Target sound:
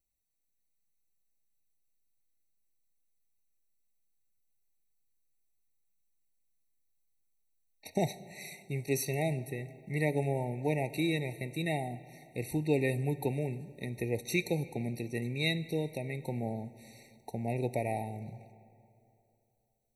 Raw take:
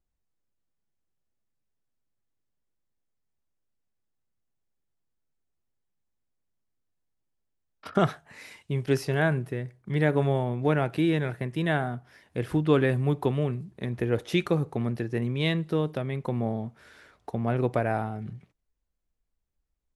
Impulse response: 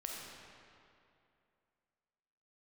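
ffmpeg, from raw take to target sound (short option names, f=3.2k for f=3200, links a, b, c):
-filter_complex "[0:a]crystalizer=i=5.5:c=0,asplit=2[a][b];[1:a]atrim=start_sample=2205,asetrate=40131,aresample=44100[c];[b][c]afir=irnorm=-1:irlink=0,volume=-13dB[d];[a][d]amix=inputs=2:normalize=0,afftfilt=real='re*eq(mod(floor(b*sr/1024/920),2),0)':imag='im*eq(mod(floor(b*sr/1024/920),2),0)':win_size=1024:overlap=0.75,volume=-8.5dB"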